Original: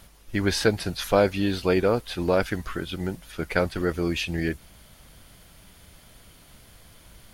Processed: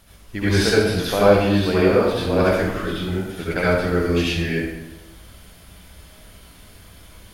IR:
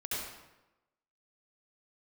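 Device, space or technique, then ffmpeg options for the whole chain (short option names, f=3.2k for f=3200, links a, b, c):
bathroom: -filter_complex "[1:a]atrim=start_sample=2205[a];[0:a][a]afir=irnorm=-1:irlink=0,volume=2dB"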